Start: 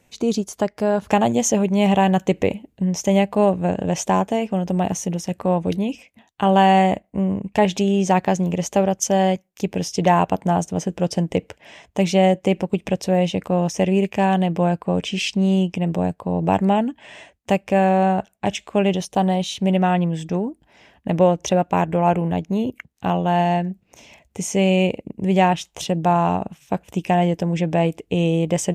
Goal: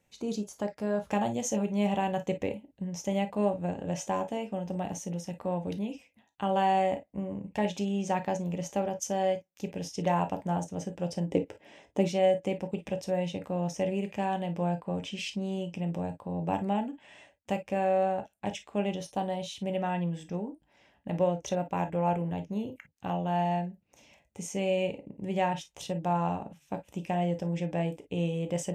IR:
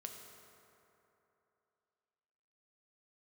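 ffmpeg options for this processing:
-filter_complex "[0:a]asettb=1/sr,asplit=3[a][b][c];[a]atrim=end=11.264[d];[b]atrim=start=11.26:end=12.08,asetpts=PTS-STARTPTS,afade=t=in:d=0.004:c=qsin,afade=t=out:st=0.816:d=0.004:c=qsin,equalizer=f=340:t=o:w=1.4:g=10.5[e];[c]atrim=start=12.076[f];[d][e]acrossfade=d=0.004:c1=hsin:c2=qsin[g];[g][f]acrossfade=d=0.004:c1=qsin:c2=hsin[h];[1:a]atrim=start_sample=2205,atrim=end_sample=3528,asetrate=57330,aresample=44100[i];[h][i]afir=irnorm=-1:irlink=0,volume=-5dB"

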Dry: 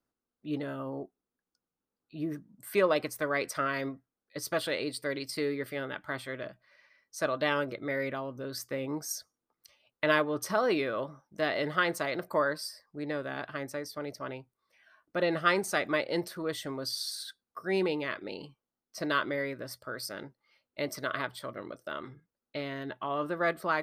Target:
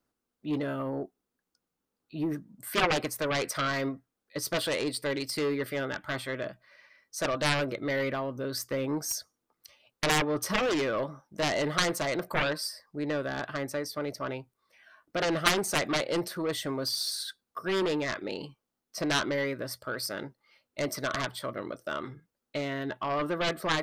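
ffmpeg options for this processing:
-af "aeval=exprs='0.299*(cos(1*acos(clip(val(0)/0.299,-1,1)))-cos(1*PI/2))+0.119*(cos(7*acos(clip(val(0)/0.299,-1,1)))-cos(7*PI/2))':c=same"

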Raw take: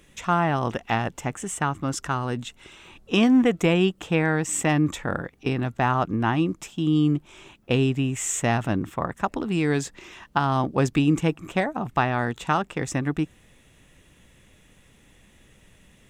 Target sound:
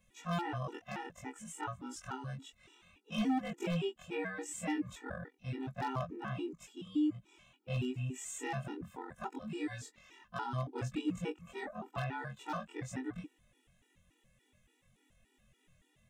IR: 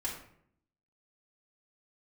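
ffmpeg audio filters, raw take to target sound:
-af "afftfilt=real='re':imag='-im':win_size=2048:overlap=0.75,aeval=exprs='0.141*(abs(mod(val(0)/0.141+3,4)-2)-1)':c=same,afftfilt=real='re*gt(sin(2*PI*3.5*pts/sr)*(1-2*mod(floor(b*sr/1024/250),2)),0)':imag='im*gt(sin(2*PI*3.5*pts/sr)*(1-2*mod(floor(b*sr/1024/250),2)),0)':win_size=1024:overlap=0.75,volume=-8dB"

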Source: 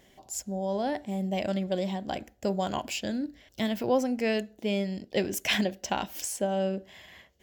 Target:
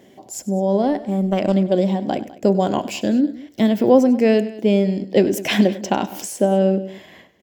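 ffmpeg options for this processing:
-filter_complex "[0:a]highpass=100,equalizer=f=300:t=o:w=2.6:g=11.5,asettb=1/sr,asplit=3[a][b][c];[a]atrim=end=0.824[d];[b]atrim=start=0.82:end=1.54,asetpts=PTS-STARTPTS,afade=t=in:d=0.004:c=qsin,afade=t=out:st=0.716:d=0.004:c=qsin,aeval=exprs='0.316*(cos(1*acos(clip(val(0)/0.316,-1,1)))-cos(1*PI/2))+0.0282*(cos(2*acos(clip(val(0)/0.316,-1,1)))-cos(2*PI/2))+0.0251*(cos(3*acos(clip(val(0)/0.316,-1,1)))-cos(3*PI/2))+0.0112*(cos(4*acos(clip(val(0)/0.316,-1,1)))-cos(4*PI/2))':c=same[e];[c]atrim=start=1.536[f];[d][e]acrossfade=d=0.004:c1=hsin:c2=qsin[g];[g][f]acrossfade=d=0.004:c1=qsin:c2=hsin,asplit=2[h][i];[i]aecho=0:1:98|203:0.141|0.106[j];[h][j]amix=inputs=2:normalize=0,volume=3.5dB"

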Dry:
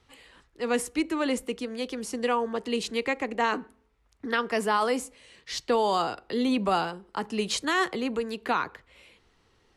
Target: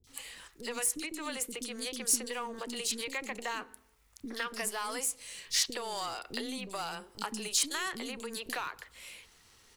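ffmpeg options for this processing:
-filter_complex "[0:a]aeval=exprs='if(lt(val(0),0),0.708*val(0),val(0))':c=same,acompressor=threshold=-36dB:ratio=10,crystalizer=i=6.5:c=0,acrossover=split=370|3600[a][b][c];[c]adelay=40[d];[b]adelay=70[e];[a][e][d]amix=inputs=3:normalize=0"

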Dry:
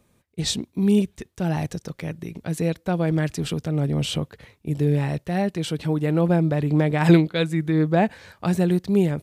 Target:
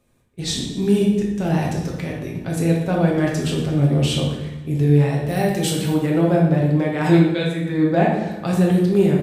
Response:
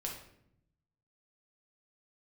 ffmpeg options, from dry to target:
-filter_complex "[0:a]asettb=1/sr,asplit=3[a][b][c];[a]atrim=end=5.284[d];[b]atrim=start=5.28:end=5.93,asetpts=PTS-STARTPTS,afade=t=in:d=0.004:c=qsin,afade=t=out:st=0.646:d=0.004:c=qsin,aemphasis=mode=production:type=50fm[e];[c]atrim=start=5.926[f];[d][e]acrossfade=d=0.004:c1=hsin:c2=qsin[g];[g][f]acrossfade=d=0.004:c1=qsin:c2=hsin,aecho=1:1:121|242|363|484|605:0.141|0.0735|0.0382|0.0199|0.0103[h];[1:a]atrim=start_sample=2205,asetrate=31311,aresample=44100[i];[h][i]afir=irnorm=-1:irlink=0,dynaudnorm=f=130:g=9:m=6dB,volume=-2.5dB"

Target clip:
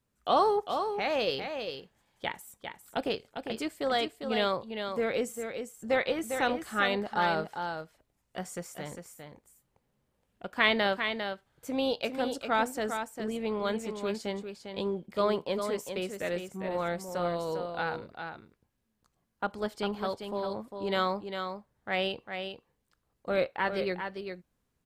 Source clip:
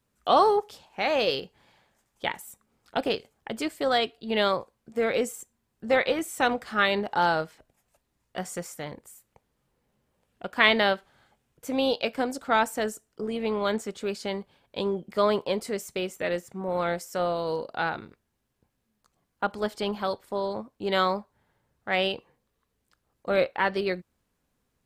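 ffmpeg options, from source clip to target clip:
-af "lowshelf=f=210:g=3,aecho=1:1:401:0.447,volume=-5dB"

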